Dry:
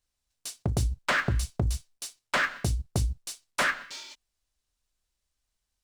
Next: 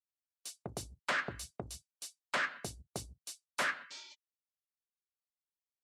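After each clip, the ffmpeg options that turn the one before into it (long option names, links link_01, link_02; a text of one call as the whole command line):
ffmpeg -i in.wav -filter_complex "[0:a]highpass=99,afftdn=noise_reduction=17:noise_floor=-53,acrossover=split=310|3800[link_01][link_02][link_03];[link_01]acompressor=threshold=-39dB:ratio=6[link_04];[link_04][link_02][link_03]amix=inputs=3:normalize=0,volume=-7.5dB" out.wav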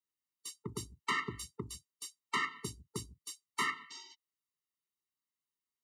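ffmpeg -i in.wav -af "highpass=82,afftfilt=real='re*eq(mod(floor(b*sr/1024/450),2),0)':imag='im*eq(mod(floor(b*sr/1024/450),2),0)':win_size=1024:overlap=0.75,volume=3.5dB" out.wav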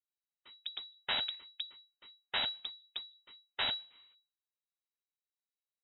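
ffmpeg -i in.wav -af "aeval=exprs='0.0944*(cos(1*acos(clip(val(0)/0.0944,-1,1)))-cos(1*PI/2))+0.00841*(cos(6*acos(clip(val(0)/0.0944,-1,1)))-cos(6*PI/2))+0.0106*(cos(7*acos(clip(val(0)/0.0944,-1,1)))-cos(7*PI/2))+0.00335*(cos(8*acos(clip(val(0)/0.0944,-1,1)))-cos(8*PI/2))':channel_layout=same,aeval=exprs='abs(val(0))':channel_layout=same,lowpass=frequency=3300:width_type=q:width=0.5098,lowpass=frequency=3300:width_type=q:width=0.6013,lowpass=frequency=3300:width_type=q:width=0.9,lowpass=frequency=3300:width_type=q:width=2.563,afreqshift=-3900,volume=2dB" out.wav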